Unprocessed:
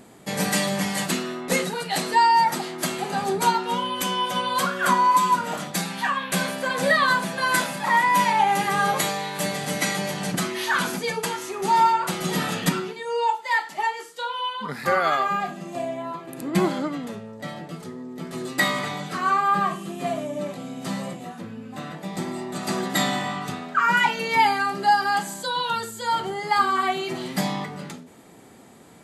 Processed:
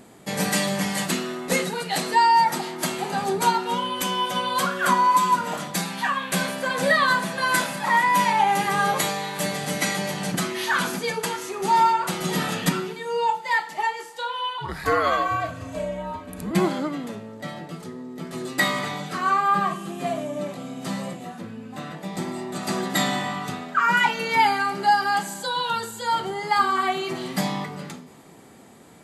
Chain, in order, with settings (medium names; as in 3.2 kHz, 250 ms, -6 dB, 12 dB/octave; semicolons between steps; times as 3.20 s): Schroeder reverb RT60 2.7 s, combs from 26 ms, DRR 19 dB; 14.58–16.51 s: frequency shift -77 Hz